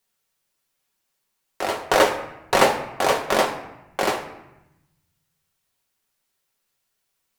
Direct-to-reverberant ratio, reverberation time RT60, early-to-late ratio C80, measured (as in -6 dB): 2.0 dB, 0.95 s, 12.5 dB